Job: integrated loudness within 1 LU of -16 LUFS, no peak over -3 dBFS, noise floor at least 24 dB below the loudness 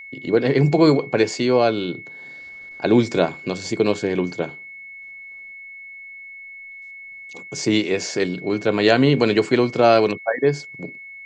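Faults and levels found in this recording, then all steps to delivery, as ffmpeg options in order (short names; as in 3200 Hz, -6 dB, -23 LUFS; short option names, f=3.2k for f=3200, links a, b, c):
steady tone 2200 Hz; tone level -36 dBFS; loudness -19.5 LUFS; peak -2.0 dBFS; loudness target -16.0 LUFS
-> -af "bandreject=f=2.2k:w=30"
-af "volume=3.5dB,alimiter=limit=-3dB:level=0:latency=1"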